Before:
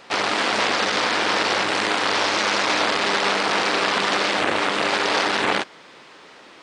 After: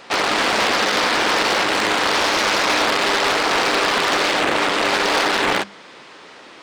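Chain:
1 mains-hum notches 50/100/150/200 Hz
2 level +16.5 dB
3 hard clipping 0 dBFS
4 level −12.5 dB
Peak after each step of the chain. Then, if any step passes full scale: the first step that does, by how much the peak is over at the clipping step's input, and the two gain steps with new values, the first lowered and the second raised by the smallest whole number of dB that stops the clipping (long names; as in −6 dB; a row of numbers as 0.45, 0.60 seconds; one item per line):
−6.5, +10.0, 0.0, −12.5 dBFS
step 2, 10.0 dB
step 2 +6.5 dB, step 4 −2.5 dB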